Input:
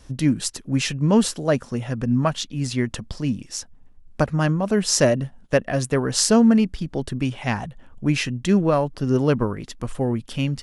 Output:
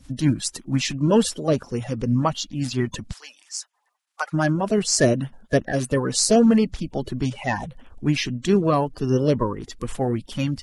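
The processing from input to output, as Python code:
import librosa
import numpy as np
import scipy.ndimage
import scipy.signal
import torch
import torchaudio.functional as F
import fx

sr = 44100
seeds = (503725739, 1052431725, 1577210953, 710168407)

y = fx.spec_quant(x, sr, step_db=30)
y = fx.highpass(y, sr, hz=850.0, slope=24, at=(3.12, 4.32), fade=0.02)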